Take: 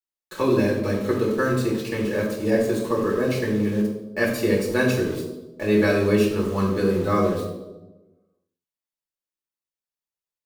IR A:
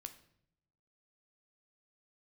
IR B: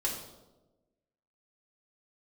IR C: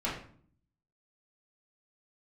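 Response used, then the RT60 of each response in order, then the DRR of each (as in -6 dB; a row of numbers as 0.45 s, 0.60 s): B; 0.70 s, 1.1 s, 0.50 s; 7.5 dB, -3.5 dB, -8.0 dB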